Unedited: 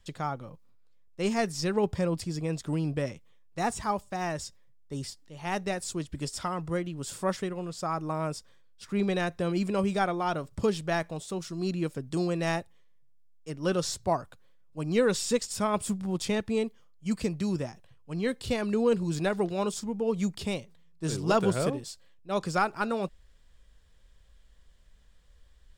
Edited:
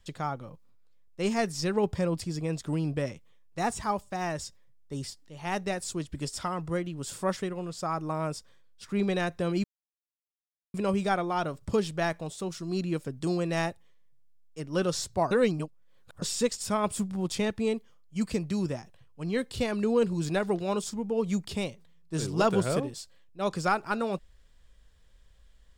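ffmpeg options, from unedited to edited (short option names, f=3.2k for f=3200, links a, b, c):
-filter_complex "[0:a]asplit=4[a][b][c][d];[a]atrim=end=9.64,asetpts=PTS-STARTPTS,afade=t=out:st=9.636:d=0.004:c=hsin,apad=pad_dur=1.1[e];[b]atrim=start=9.64:end=14.212,asetpts=PTS-STARTPTS,afade=t=in:d=0.004:c=hsin[f];[c]atrim=start=14.208:end=15.122,asetpts=PTS-STARTPTS,areverse[g];[d]atrim=start=15.118[h];[e][f]concat=n=2:v=0:a=1[i];[i][g]acrossfade=d=0.004:c1=hsin:c2=hsin[j];[j][h]acrossfade=d=0.004:c1=hsin:c2=hsin"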